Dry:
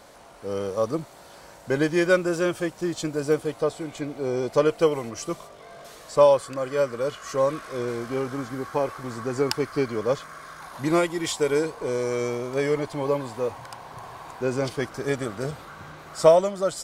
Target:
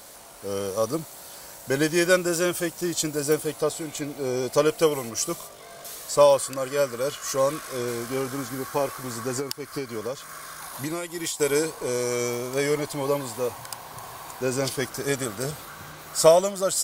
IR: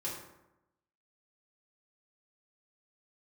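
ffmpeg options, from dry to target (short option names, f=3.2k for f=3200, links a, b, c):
-filter_complex "[0:a]aemphasis=mode=production:type=75fm,asettb=1/sr,asplit=3[a][b][c];[a]atrim=end=9.394[d];[b]atrim=start=9.39:end=11.4,asetpts=PTS-STARTPTS,afade=t=in:d=0.004:c=qsin,afade=t=out:st=2.006:d=0.004:c=qsin,acompressor=threshold=-27dB:ratio=12[e];[c]atrim=start=11.396[f];[d][e]acrossfade=d=0.004:c1=hsin:c2=qsin[g];[g][f]acrossfade=d=0.004:c1=qsin:c2=hsin"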